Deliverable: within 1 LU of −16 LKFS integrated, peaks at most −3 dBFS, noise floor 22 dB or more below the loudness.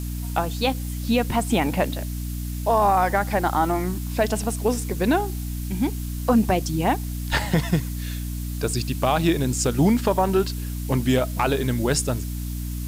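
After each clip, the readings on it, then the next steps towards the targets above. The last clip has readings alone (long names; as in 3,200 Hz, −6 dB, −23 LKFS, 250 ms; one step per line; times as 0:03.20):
mains hum 60 Hz; hum harmonics up to 300 Hz; level of the hum −27 dBFS; background noise floor −29 dBFS; target noise floor −46 dBFS; integrated loudness −23.5 LKFS; sample peak −8.0 dBFS; target loudness −16.0 LKFS
→ hum removal 60 Hz, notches 5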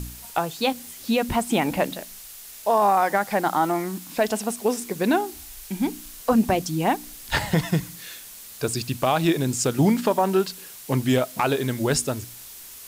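mains hum none found; background noise floor −42 dBFS; target noise floor −46 dBFS
→ broadband denoise 6 dB, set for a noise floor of −42 dBFS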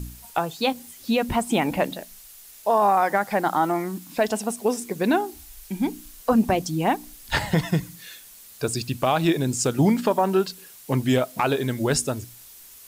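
background noise floor −47 dBFS; integrated loudness −24.0 LKFS; sample peak −9.0 dBFS; target loudness −16.0 LKFS
→ level +8 dB
brickwall limiter −3 dBFS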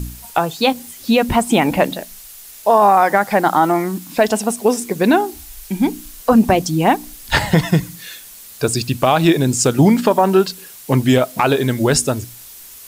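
integrated loudness −16.0 LKFS; sample peak −3.0 dBFS; background noise floor −39 dBFS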